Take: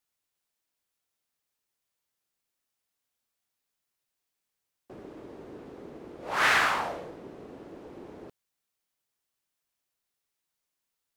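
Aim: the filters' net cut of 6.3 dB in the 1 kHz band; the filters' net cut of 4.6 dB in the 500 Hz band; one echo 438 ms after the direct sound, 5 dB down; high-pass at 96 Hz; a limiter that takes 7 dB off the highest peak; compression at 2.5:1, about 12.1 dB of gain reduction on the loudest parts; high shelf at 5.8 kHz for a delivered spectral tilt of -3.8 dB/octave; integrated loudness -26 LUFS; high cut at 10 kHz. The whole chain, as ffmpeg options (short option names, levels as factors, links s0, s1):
-af "highpass=96,lowpass=10000,equalizer=f=500:t=o:g=-3.5,equalizer=f=1000:t=o:g=-8,highshelf=f=5800:g=6.5,acompressor=threshold=0.01:ratio=2.5,alimiter=level_in=2.66:limit=0.0631:level=0:latency=1,volume=0.376,aecho=1:1:438:0.562,volume=8.91"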